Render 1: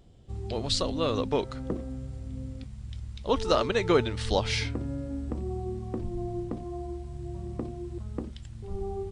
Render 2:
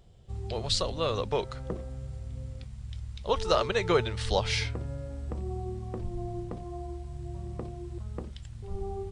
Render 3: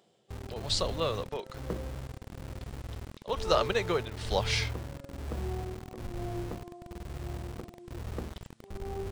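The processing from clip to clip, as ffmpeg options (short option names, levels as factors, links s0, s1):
-af "equalizer=f=270:t=o:w=0.46:g=-14"
-filter_complex "[0:a]tremolo=f=1.1:d=0.61,acrossover=split=200[s0][s1];[s0]acrusher=bits=6:mix=0:aa=0.000001[s2];[s2][s1]amix=inputs=2:normalize=0"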